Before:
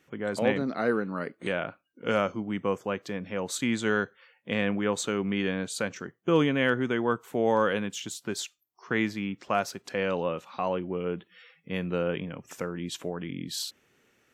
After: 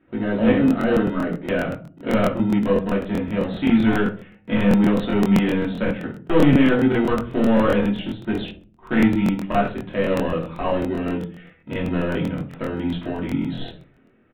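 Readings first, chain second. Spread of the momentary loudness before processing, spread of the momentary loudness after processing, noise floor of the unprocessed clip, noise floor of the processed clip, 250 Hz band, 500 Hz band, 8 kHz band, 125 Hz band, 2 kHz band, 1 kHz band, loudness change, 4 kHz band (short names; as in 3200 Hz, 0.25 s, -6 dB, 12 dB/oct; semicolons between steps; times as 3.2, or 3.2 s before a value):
10 LU, 11 LU, -70 dBFS, -55 dBFS, +12.0 dB, +6.0 dB, n/a, +11.5 dB, +3.5 dB, +5.0 dB, +8.5 dB, +2.0 dB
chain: low-pass opened by the level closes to 1500 Hz, open at -25.5 dBFS; bell 120 Hz +3.5 dB 2.8 oct; notches 60/120 Hz; in parallel at -7 dB: sample-and-hold 39×; on the sum: soft clip -16.5 dBFS, distortion -15 dB; shoebox room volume 240 m³, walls furnished, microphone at 2.8 m; downsampling 8000 Hz; crackling interface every 0.13 s, samples 1024, repeat, from 0.66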